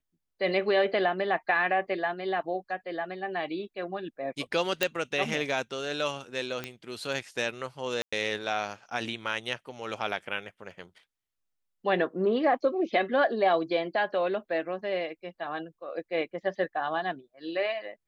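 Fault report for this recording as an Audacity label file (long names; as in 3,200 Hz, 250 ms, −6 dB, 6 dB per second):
4.830000	4.830000	click −9 dBFS
6.640000	6.640000	click −18 dBFS
8.020000	8.120000	drop-out 105 ms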